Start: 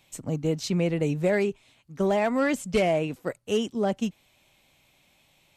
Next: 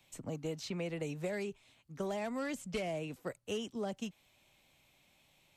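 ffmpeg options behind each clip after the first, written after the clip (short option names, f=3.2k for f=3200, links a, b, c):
-filter_complex "[0:a]acrossover=split=200|490|3700[a][b][c][d];[a]acompressor=threshold=-41dB:ratio=4[e];[b]acompressor=threshold=-39dB:ratio=4[f];[c]acompressor=threshold=-35dB:ratio=4[g];[d]acompressor=threshold=-44dB:ratio=4[h];[e][f][g][h]amix=inputs=4:normalize=0,volume=-5.5dB"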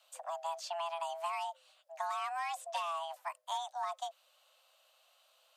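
-af "afreqshift=500"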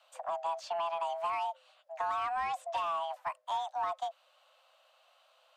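-filter_complex "[0:a]asplit=2[a][b];[b]highpass=f=720:p=1,volume=12dB,asoftclip=type=tanh:threshold=-23.5dB[c];[a][c]amix=inputs=2:normalize=0,lowpass=f=1.2k:p=1,volume=-6dB,volume=2dB"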